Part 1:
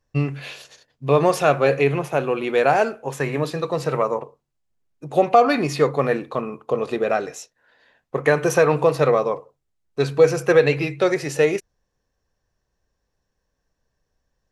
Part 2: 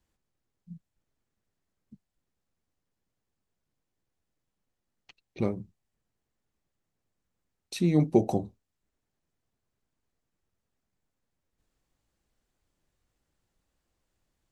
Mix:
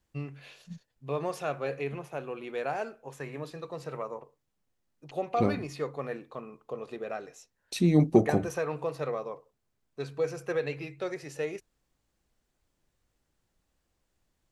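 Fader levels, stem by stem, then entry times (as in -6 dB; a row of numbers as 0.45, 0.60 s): -15.5, +1.5 dB; 0.00, 0.00 s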